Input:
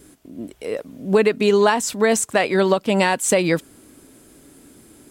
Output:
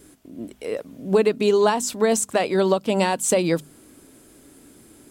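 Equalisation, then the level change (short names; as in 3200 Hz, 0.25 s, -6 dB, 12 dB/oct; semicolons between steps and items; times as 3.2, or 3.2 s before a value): notches 50/100/150/200/250 Hz; dynamic EQ 1900 Hz, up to -7 dB, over -35 dBFS, Q 1.4; -1.5 dB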